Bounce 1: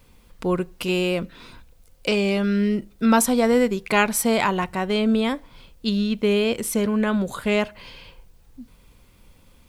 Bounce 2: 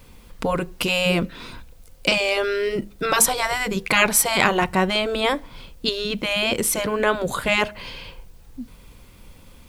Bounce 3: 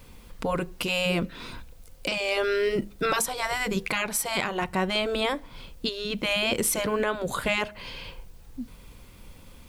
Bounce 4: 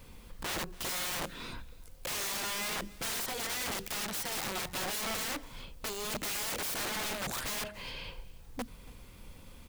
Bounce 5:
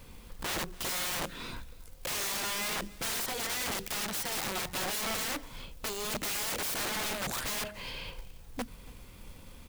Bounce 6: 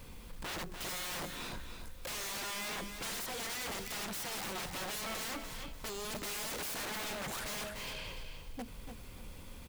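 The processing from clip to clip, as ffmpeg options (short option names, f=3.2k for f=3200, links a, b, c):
-af "afftfilt=real='re*lt(hypot(re,im),0.501)':imag='im*lt(hypot(re,im),0.501)':win_size=1024:overlap=0.75,volume=6.5dB"
-af "alimiter=limit=-13dB:level=0:latency=1:release=454,volume=-1.5dB"
-af "aeval=exprs='(mod(23.7*val(0)+1,2)-1)/23.7':c=same,aecho=1:1:282:0.0841,volume=-3dB"
-af "acrusher=bits=4:mode=log:mix=0:aa=0.000001,volume=1.5dB"
-af "asoftclip=type=tanh:threshold=-39.5dB,aecho=1:1:296|592|888:0.398|0.111|0.0312,volume=1dB"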